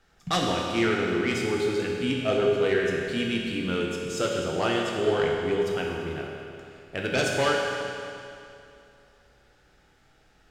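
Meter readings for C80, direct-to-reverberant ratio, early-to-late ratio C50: 1.5 dB, -1.5 dB, 0.5 dB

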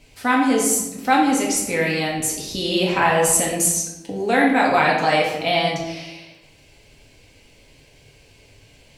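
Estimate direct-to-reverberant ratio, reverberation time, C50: -4.0 dB, 1.0 s, 2.5 dB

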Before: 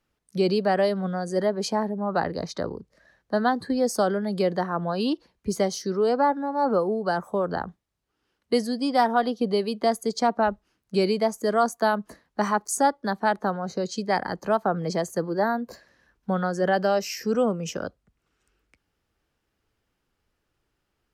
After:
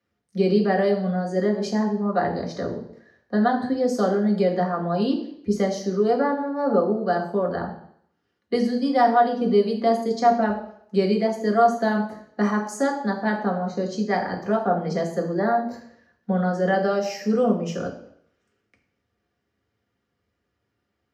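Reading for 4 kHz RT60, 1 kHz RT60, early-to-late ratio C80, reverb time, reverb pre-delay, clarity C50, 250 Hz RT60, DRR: 0.65 s, 0.65 s, 12.0 dB, 0.70 s, 3 ms, 9.0 dB, 0.60 s, 0.0 dB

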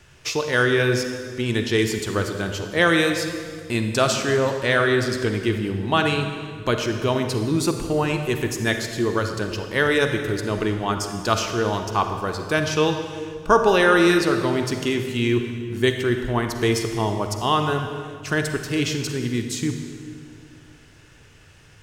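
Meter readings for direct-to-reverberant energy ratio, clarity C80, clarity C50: 5.5 dB, 7.5 dB, 6.0 dB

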